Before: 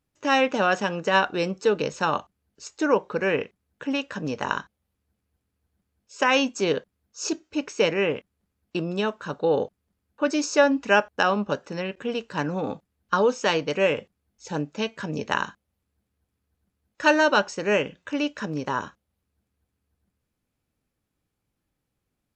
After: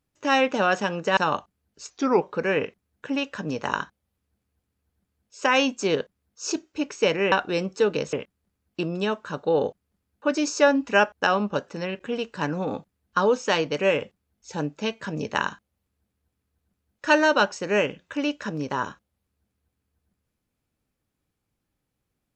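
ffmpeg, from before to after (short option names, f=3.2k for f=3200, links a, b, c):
-filter_complex "[0:a]asplit=6[a][b][c][d][e][f];[a]atrim=end=1.172[g];[b]atrim=start=1.978:end=2.714[h];[c]atrim=start=2.71:end=2.99,asetpts=PTS-STARTPTS,asetrate=38808,aresample=44100[i];[d]atrim=start=2.986:end=8.092[j];[e]atrim=start=1.168:end=1.982[k];[f]atrim=start=8.088[l];[g][h]acrossfade=d=0.004:c1=hsin:c2=hsin[m];[m][i]acrossfade=d=0.004:c1=hsin:c2=hsin[n];[n][j]acrossfade=d=0.004:c1=hsin:c2=hsin[o];[o][k]acrossfade=d=0.004:c1=hsin:c2=hsin[p];[p][l]acrossfade=d=0.004:c1=hsin:c2=hsin"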